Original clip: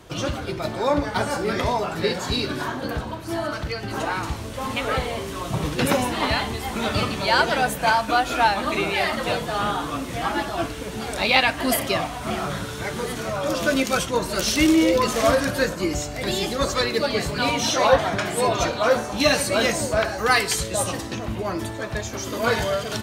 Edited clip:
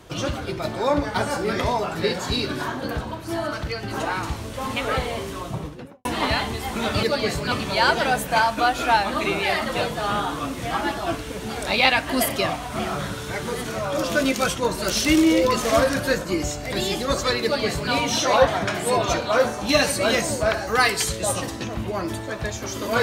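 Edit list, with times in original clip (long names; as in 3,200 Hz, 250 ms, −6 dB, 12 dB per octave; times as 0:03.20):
0:05.21–0:06.05: fade out and dull
0:16.94–0:17.43: duplicate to 0:07.03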